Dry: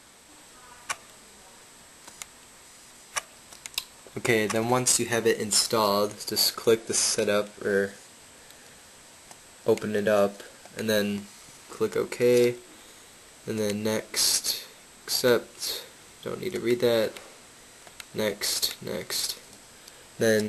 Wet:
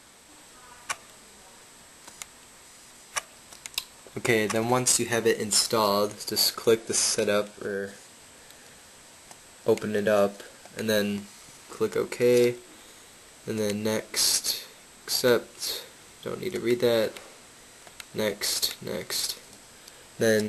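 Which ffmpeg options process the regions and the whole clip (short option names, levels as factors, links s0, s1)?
-filter_complex "[0:a]asettb=1/sr,asplit=3[s0][s1][s2];[s0]atrim=end=7.494[s3];[s1]atrim=start=7.49:end=7.92,asetpts=PTS-STARTPTS,afade=t=in:d=0.004:c=qsin,afade=t=out:st=0.426:d=0.004:c=qsin,bandreject=f=2000:w=7.1,acompressor=threshold=0.0398:ratio=3:attack=3.2:release=140:knee=1:detection=peak[s4];[s2]atrim=start=7.916[s5];[s3][s4]acrossfade=d=0.004:c1=hsin:c2=qsin[s6];[s6][s5]acrossfade=d=0.004:c1=qsin:c2=hsin"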